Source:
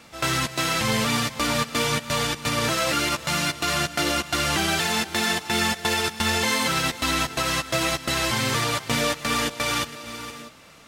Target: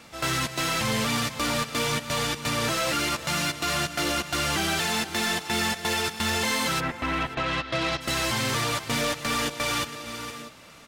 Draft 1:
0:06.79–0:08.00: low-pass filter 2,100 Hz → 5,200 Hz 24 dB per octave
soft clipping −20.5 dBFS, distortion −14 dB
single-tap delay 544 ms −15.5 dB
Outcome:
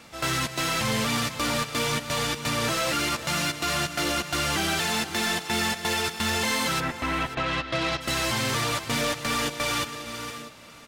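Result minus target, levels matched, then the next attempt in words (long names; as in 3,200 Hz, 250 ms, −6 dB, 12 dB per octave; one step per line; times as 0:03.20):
echo-to-direct +6.5 dB
0:06.79–0:08.00: low-pass filter 2,100 Hz → 5,200 Hz 24 dB per octave
soft clipping −20.5 dBFS, distortion −14 dB
single-tap delay 544 ms −22 dB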